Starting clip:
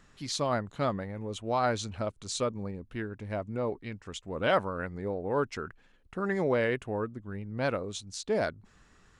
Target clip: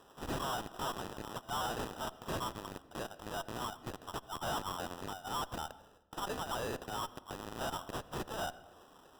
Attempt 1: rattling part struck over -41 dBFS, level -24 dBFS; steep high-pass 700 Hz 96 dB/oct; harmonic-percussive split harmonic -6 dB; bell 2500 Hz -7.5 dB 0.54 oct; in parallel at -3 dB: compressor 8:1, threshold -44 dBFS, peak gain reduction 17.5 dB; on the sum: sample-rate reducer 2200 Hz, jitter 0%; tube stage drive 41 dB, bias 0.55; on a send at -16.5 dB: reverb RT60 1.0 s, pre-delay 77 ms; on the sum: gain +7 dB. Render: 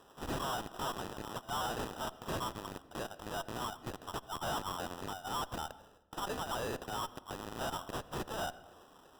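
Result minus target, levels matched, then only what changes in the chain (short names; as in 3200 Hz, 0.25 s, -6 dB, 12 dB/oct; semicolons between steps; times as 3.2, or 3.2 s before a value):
compressor: peak gain reduction -9 dB
change: compressor 8:1, threshold -54 dBFS, peak gain reduction 26.5 dB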